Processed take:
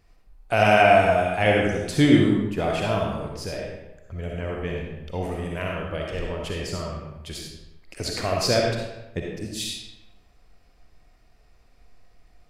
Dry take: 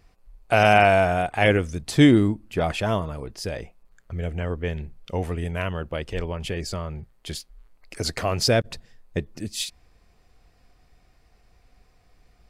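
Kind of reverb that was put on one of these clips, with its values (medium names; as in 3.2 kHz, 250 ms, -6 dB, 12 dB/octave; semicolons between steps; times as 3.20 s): algorithmic reverb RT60 1 s, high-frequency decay 0.75×, pre-delay 20 ms, DRR -1.5 dB; trim -3.5 dB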